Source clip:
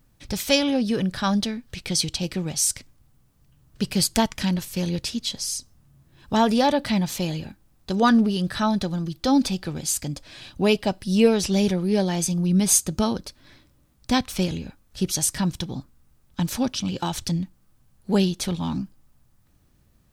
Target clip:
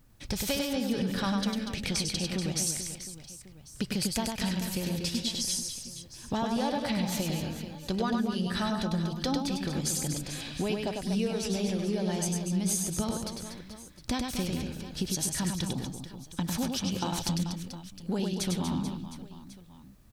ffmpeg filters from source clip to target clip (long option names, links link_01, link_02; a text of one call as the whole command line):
ffmpeg -i in.wav -filter_complex "[0:a]acompressor=threshold=-29dB:ratio=6,asplit=2[link_01][link_02];[link_02]aecho=0:1:100|240|436|710.4|1095:0.631|0.398|0.251|0.158|0.1[link_03];[link_01][link_03]amix=inputs=2:normalize=0" out.wav